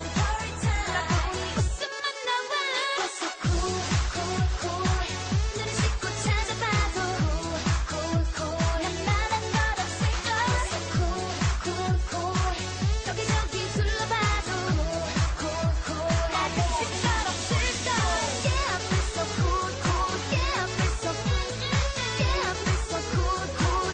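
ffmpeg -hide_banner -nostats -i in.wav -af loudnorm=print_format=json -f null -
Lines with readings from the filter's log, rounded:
"input_i" : "-27.1",
"input_tp" : "-12.8",
"input_lra" : "1.4",
"input_thresh" : "-37.1",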